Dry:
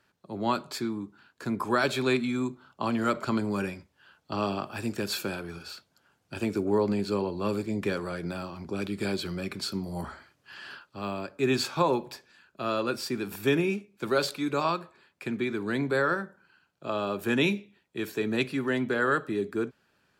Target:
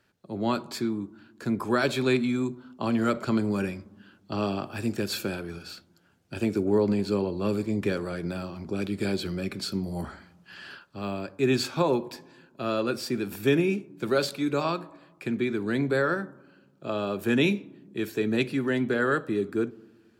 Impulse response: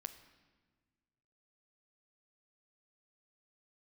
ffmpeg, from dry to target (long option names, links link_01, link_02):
-filter_complex "[0:a]asplit=2[link_01][link_02];[link_02]lowpass=frequency=1100:width=0.5412,lowpass=frequency=1100:width=1.3066[link_03];[1:a]atrim=start_sample=2205[link_04];[link_03][link_04]afir=irnorm=-1:irlink=0,volume=-3dB[link_05];[link_01][link_05]amix=inputs=2:normalize=0"